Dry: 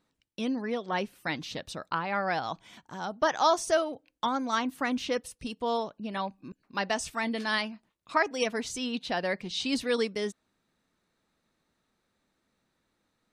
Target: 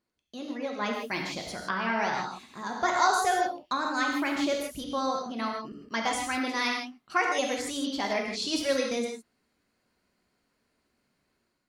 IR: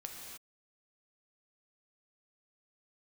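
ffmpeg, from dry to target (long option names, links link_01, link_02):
-filter_complex "[0:a]dynaudnorm=framelen=480:gausssize=3:maxgain=8dB[link_01];[1:a]atrim=start_sample=2205,asetrate=70560,aresample=44100[link_02];[link_01][link_02]afir=irnorm=-1:irlink=0,asetrate=50274,aresample=44100"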